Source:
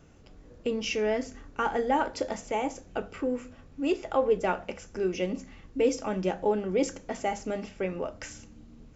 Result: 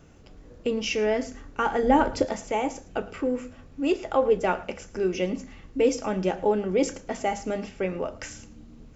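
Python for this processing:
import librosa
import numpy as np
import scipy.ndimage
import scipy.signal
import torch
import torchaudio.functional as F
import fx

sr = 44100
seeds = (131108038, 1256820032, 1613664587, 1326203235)

p1 = fx.low_shelf(x, sr, hz=320.0, db=11.5, at=(1.83, 2.25))
p2 = p1 + fx.echo_single(p1, sr, ms=110, db=-19.5, dry=0)
y = p2 * 10.0 ** (3.0 / 20.0)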